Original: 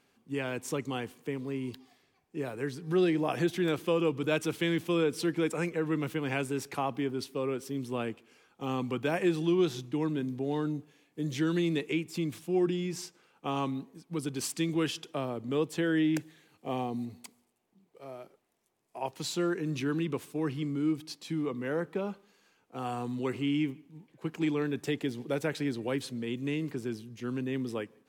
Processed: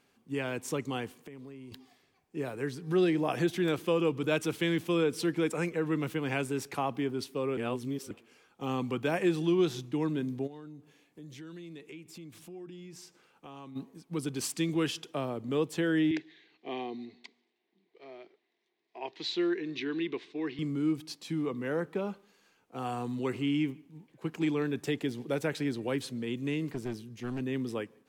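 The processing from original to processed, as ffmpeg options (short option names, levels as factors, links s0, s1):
-filter_complex "[0:a]asettb=1/sr,asplit=3[s0][s1][s2];[s0]atrim=end=1.174[s3];[s1]atrim=start=1.17:end=1.72,asetpts=PTS-STARTPTS,afade=t=in:d=0.004:c=qsin,afade=t=out:st=0.546:d=0.004:c=qsin,acompressor=threshold=0.00794:ratio=16:attack=3.2:release=140:knee=1:detection=peak[s4];[s2]atrim=start=1.716[s5];[s3][s4]acrossfade=d=0.004:c1=hsin:c2=qsin[s6];[s6][s5]acrossfade=d=0.004:c1=qsin:c2=hsin,asplit=3[s7][s8][s9];[s7]afade=t=out:st=10.46:d=0.02[s10];[s8]acompressor=threshold=0.00355:ratio=3:attack=3.2:release=140:knee=1:detection=peak,afade=t=in:st=10.46:d=0.02,afade=t=out:st=13.75:d=0.02[s11];[s9]afade=t=in:st=13.75:d=0.02[s12];[s10][s11][s12]amix=inputs=3:normalize=0,asettb=1/sr,asplit=3[s13][s14][s15];[s13]atrim=end=16.114[s16];[s14]atrim=start=16.11:end=20.59,asetpts=PTS-STARTPTS,afade=t=in:d=0.004:c=qsin,afade=t=out:st=4.476:d=0.004:c=qsin,highpass=340,equalizer=f=360:t=q:w=4:g=6,equalizer=f=550:t=q:w=4:g=-10,equalizer=f=860:t=q:w=4:g=-5,equalizer=f=1300:t=q:w=4:g=-10,equalizer=f=2000:t=q:w=4:g=7,equalizer=f=3800:t=q:w=4:g=6,lowpass=f=4700:w=0.5412,lowpass=f=4700:w=1.3066[s17];[s15]atrim=start=20.586[s18];[s16][s17]acrossfade=d=0.004:c1=hsin:c2=qsin[s19];[s19][s18]acrossfade=d=0.004:c1=qsin:c2=hsin,asettb=1/sr,asplit=3[s20][s21][s22];[s20]atrim=end=26.714[s23];[s21]atrim=start=26.71:end=27.4,asetpts=PTS-STARTPTS,afade=t=in:d=0.004:c=qsin,afade=t=out:st=0.686:d=0.004:c=qsin,aeval=exprs='clip(val(0),-1,0.0141)':c=same[s24];[s22]atrim=start=27.396[s25];[s23][s24]acrossfade=d=0.004:c1=hsin:c2=qsin[s26];[s26][s25]acrossfade=d=0.004:c1=qsin:c2=hsin,asplit=3[s27][s28][s29];[s27]atrim=end=7.572[s30];[s28]atrim=start=7.568:end=8.112,asetpts=PTS-STARTPTS,areverse[s31];[s29]atrim=start=8.108[s32];[s30][s31]acrossfade=d=0.004:c1=hsin:c2=hsin[s33];[s33][s32]acrossfade=d=0.004:c1=hsin:c2=hsin"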